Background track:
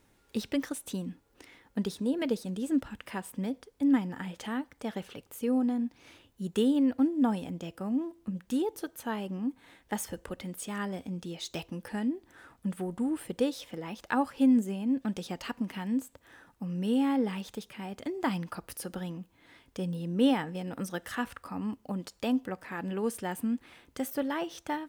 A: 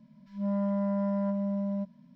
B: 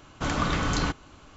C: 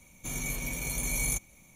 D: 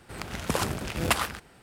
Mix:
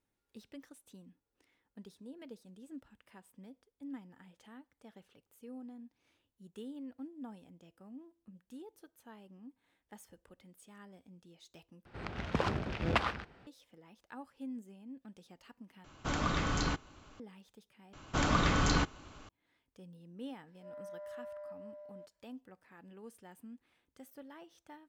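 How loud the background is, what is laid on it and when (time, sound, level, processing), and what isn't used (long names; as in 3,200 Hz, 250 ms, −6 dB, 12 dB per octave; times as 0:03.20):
background track −20 dB
0:11.85: overwrite with D −3.5 dB + high-frequency loss of the air 210 metres
0:15.84: overwrite with B −6.5 dB
0:17.93: overwrite with B −2.5 dB
0:20.21: mix in A −10.5 dB + Chebyshev high-pass with heavy ripple 420 Hz, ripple 9 dB
not used: C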